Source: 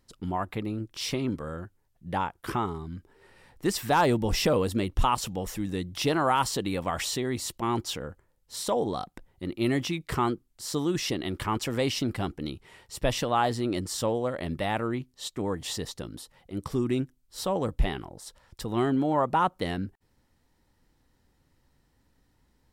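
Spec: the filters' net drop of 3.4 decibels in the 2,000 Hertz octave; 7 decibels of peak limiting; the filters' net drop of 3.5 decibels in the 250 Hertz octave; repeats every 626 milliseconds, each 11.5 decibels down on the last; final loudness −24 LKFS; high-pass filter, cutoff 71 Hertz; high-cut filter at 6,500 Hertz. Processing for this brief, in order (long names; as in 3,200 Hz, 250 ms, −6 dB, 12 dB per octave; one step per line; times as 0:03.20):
high-pass filter 71 Hz
low-pass filter 6,500 Hz
parametric band 250 Hz −4.5 dB
parametric band 2,000 Hz −4.5 dB
brickwall limiter −20.5 dBFS
repeating echo 626 ms, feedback 27%, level −11.5 dB
level +9 dB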